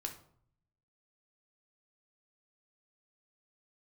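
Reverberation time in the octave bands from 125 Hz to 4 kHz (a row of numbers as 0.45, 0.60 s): 1.1, 0.80, 0.60, 0.60, 0.40, 0.35 s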